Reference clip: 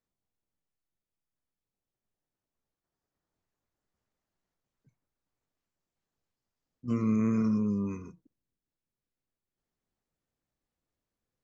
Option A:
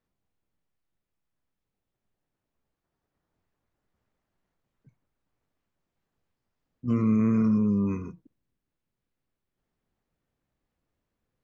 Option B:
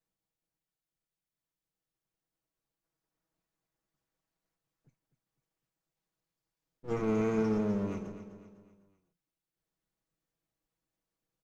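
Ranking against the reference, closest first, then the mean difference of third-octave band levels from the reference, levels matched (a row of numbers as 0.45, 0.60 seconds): A, B; 1.5, 7.0 decibels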